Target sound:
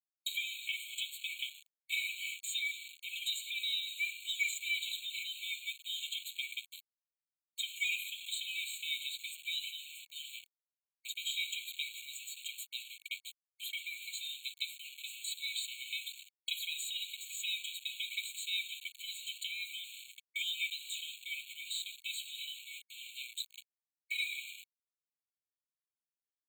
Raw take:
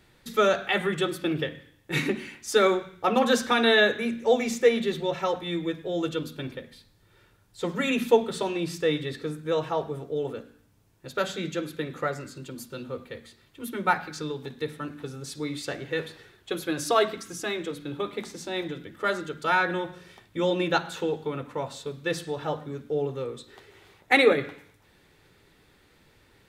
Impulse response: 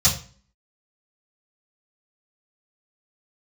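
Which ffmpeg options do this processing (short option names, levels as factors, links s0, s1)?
-filter_complex "[0:a]bandreject=f=60:t=h:w=6,bandreject=f=120:t=h:w=6,bandreject=f=180:t=h:w=6,bandreject=f=240:t=h:w=6,bandreject=f=300:t=h:w=6,bandreject=f=360:t=h:w=6,bandreject=f=420:t=h:w=6,bandreject=f=480:t=h:w=6,agate=range=0.0224:threshold=0.00501:ratio=3:detection=peak,acrossover=split=1700|5900[s0][s1][s2];[s0]acompressor=threshold=0.0251:ratio=4[s3];[s1]acompressor=threshold=0.00631:ratio=4[s4];[s2]acompressor=threshold=0.00158:ratio=4[s5];[s3][s4][s5]amix=inputs=3:normalize=0,adynamicequalizer=threshold=0.00501:dfrequency=2300:dqfactor=0.7:tfrequency=2300:tqfactor=0.7:attack=5:release=100:ratio=0.375:range=2:mode=cutabove:tftype=bell,aecho=1:1:1.3:0.91,alimiter=level_in=1.12:limit=0.0631:level=0:latency=1:release=62,volume=0.891,lowshelf=f=710:t=q:w=3:g=-10.5,aeval=exprs='val(0)*gte(abs(val(0)),0.00501)':c=same,afftfilt=real='re*eq(mod(floor(b*sr/1024/2200),2),1)':imag='im*eq(mod(floor(b*sr/1024/2200),2),1)':win_size=1024:overlap=0.75,volume=2.37"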